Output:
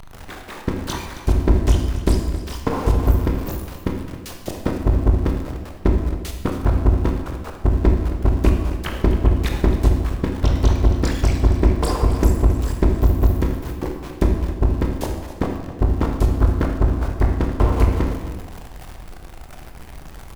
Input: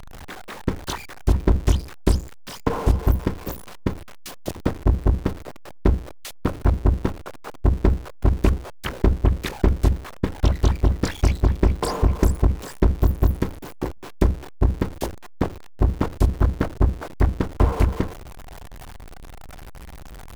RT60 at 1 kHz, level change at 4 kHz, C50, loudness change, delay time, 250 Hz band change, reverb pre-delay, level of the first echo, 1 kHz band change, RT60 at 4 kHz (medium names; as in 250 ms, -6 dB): 1.2 s, +1.5 dB, 4.0 dB, +2.5 dB, 269 ms, +3.0 dB, 19 ms, -13.5 dB, +2.0 dB, 0.95 s